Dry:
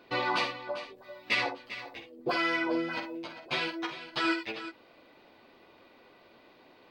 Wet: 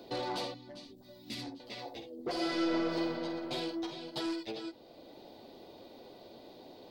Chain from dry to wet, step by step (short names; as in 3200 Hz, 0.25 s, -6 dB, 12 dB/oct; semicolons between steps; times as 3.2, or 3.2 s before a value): band shelf 1700 Hz -14 dB; soft clip -30.5 dBFS, distortion -12 dB; 0.54–1.6 EQ curve 290 Hz 0 dB, 460 Hz -19 dB, 6700 Hz -2 dB; 2.32–2.97 reverb throw, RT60 2.6 s, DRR -6.5 dB; three-band squash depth 40%